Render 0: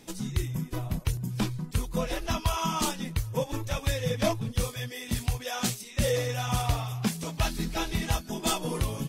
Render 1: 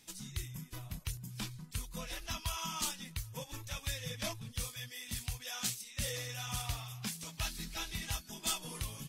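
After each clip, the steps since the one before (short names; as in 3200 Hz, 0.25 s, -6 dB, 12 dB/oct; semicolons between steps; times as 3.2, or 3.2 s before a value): passive tone stack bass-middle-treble 5-5-5; gain +2 dB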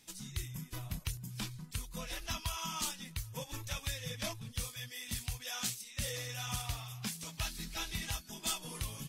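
recorder AGC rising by 5.3 dB/s; gain -1 dB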